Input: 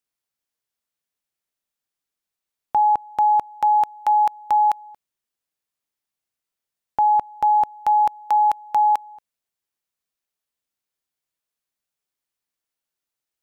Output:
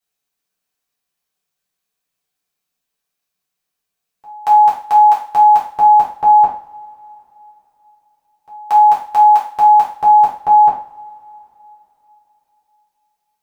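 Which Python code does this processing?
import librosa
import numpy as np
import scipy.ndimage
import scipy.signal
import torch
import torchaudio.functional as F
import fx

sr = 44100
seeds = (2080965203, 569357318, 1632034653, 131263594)

y = np.flip(x).copy()
y = fx.rev_double_slope(y, sr, seeds[0], early_s=0.42, late_s=3.8, knee_db=-28, drr_db=-7.0)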